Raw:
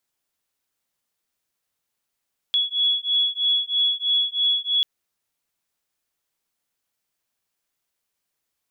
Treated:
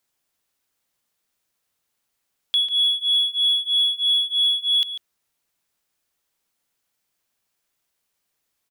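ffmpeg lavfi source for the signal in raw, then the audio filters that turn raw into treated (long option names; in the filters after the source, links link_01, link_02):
-f lavfi -i "aevalsrc='0.0794*(sin(2*PI*3370*t)+sin(2*PI*3373.1*t))':duration=2.29:sample_rate=44100"
-filter_complex "[0:a]asplit=2[link_01][link_02];[link_02]asoftclip=type=tanh:threshold=-27.5dB,volume=-6.5dB[link_03];[link_01][link_03]amix=inputs=2:normalize=0,asplit=2[link_04][link_05];[link_05]adelay=145.8,volume=-11dB,highshelf=frequency=4000:gain=-3.28[link_06];[link_04][link_06]amix=inputs=2:normalize=0"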